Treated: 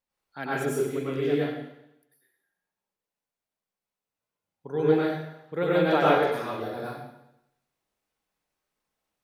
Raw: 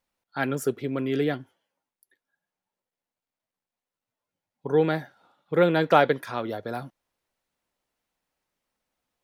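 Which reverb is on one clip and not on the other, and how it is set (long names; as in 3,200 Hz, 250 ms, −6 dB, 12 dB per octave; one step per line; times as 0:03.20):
dense smooth reverb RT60 0.84 s, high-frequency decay 1×, pre-delay 85 ms, DRR −7.5 dB
level −9 dB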